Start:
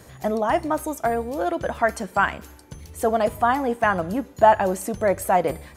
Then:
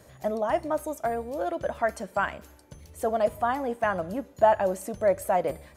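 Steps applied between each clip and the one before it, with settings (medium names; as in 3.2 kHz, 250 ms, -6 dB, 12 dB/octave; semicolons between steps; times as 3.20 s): small resonant body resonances 590 Hz, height 8 dB, ringing for 30 ms; trim -7.5 dB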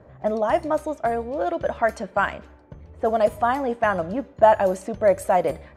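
level-controlled noise filter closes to 1.2 kHz, open at -21 dBFS; trim +5 dB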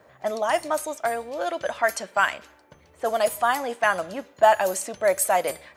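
tilt EQ +4.5 dB/octave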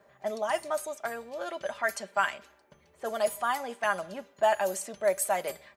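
comb 5 ms, depth 48%; trim -7.5 dB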